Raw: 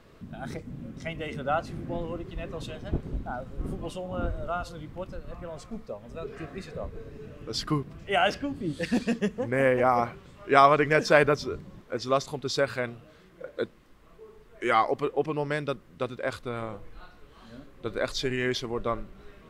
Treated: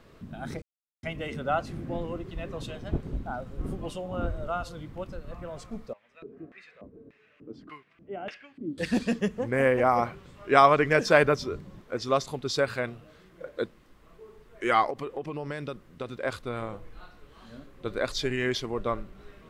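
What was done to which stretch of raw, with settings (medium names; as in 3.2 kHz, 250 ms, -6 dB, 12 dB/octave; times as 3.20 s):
0.62–1.03 s: mute
5.93–8.78 s: LFO band-pass square 1.7 Hz 280–2200 Hz
14.90–16.19 s: compression 5:1, threshold -30 dBFS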